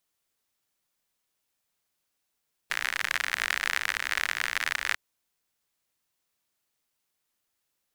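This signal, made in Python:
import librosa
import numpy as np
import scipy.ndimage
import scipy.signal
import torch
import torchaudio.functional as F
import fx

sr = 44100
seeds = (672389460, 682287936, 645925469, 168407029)

y = fx.rain(sr, seeds[0], length_s=2.25, drops_per_s=61.0, hz=1800.0, bed_db=-23.5)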